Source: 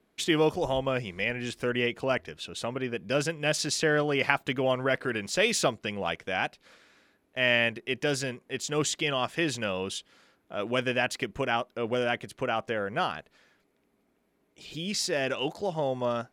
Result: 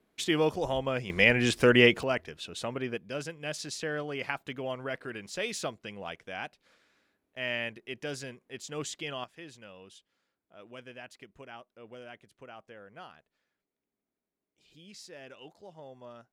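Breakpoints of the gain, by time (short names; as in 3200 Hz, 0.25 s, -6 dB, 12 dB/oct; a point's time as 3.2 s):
-2.5 dB
from 1.1 s +8 dB
from 2.03 s -2 dB
from 2.98 s -9 dB
from 9.24 s -19 dB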